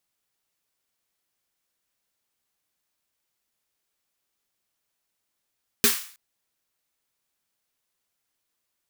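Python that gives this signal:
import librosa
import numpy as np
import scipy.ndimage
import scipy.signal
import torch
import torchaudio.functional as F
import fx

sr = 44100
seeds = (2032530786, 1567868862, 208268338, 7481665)

y = fx.drum_snare(sr, seeds[0], length_s=0.32, hz=230.0, second_hz=410.0, noise_db=4.5, noise_from_hz=1100.0, decay_s=0.16, noise_decay_s=0.47)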